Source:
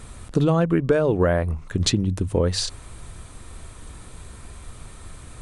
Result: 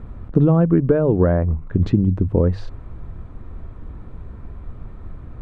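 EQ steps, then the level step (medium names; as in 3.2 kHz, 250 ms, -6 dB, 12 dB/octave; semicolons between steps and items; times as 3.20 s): low-pass 1.4 kHz 12 dB/octave; bass shelf 96 Hz +9 dB; peaking EQ 230 Hz +6 dB 2.1 oct; -1.5 dB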